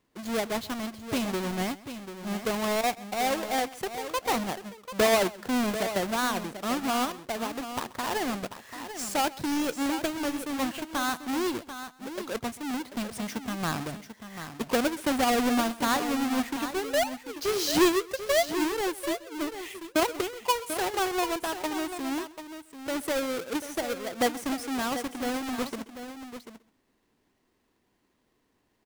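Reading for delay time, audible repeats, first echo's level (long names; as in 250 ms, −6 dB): 131 ms, 3, −20.0 dB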